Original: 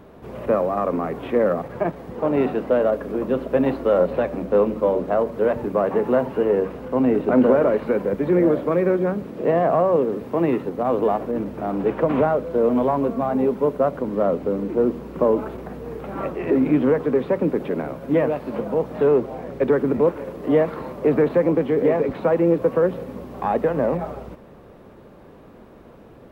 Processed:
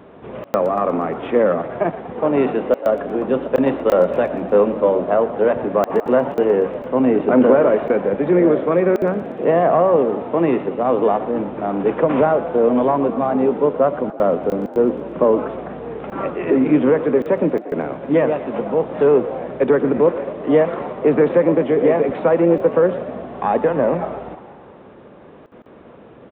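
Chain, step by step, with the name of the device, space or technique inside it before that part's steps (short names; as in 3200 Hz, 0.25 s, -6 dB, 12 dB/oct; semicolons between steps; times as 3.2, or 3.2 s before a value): call with lost packets (HPF 160 Hz 6 dB/oct; downsampling 8000 Hz; packet loss packets of 20 ms bursts); frequency-shifting echo 0.119 s, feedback 64%, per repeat +48 Hz, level -15 dB; gain +4 dB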